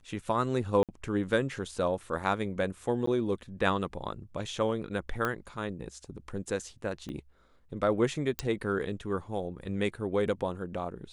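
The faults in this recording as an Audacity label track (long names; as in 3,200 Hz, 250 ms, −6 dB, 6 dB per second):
0.830000	0.890000	drop-out 57 ms
3.060000	3.070000	drop-out 14 ms
5.250000	5.250000	click −16 dBFS
7.090000	7.090000	click −28 dBFS
8.390000	8.390000	click −14 dBFS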